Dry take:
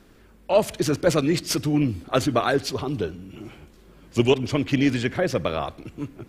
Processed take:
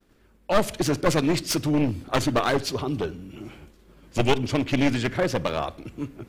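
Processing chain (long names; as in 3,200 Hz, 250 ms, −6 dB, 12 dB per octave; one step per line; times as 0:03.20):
wavefolder on the positive side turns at −19 dBFS
downward expander −46 dBFS
on a send: convolution reverb RT60 0.45 s, pre-delay 3 ms, DRR 19.5 dB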